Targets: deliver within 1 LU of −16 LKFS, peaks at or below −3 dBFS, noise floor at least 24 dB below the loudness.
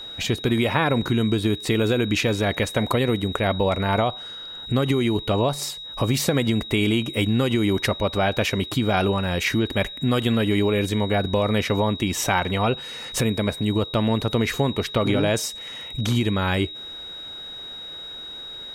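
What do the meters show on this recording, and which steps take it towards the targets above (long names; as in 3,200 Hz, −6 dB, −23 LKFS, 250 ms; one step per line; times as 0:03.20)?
interfering tone 3,800 Hz; level of the tone −34 dBFS; integrated loudness −22.5 LKFS; sample peak −4.5 dBFS; target loudness −16.0 LKFS
→ notch filter 3,800 Hz, Q 30
level +6.5 dB
brickwall limiter −3 dBFS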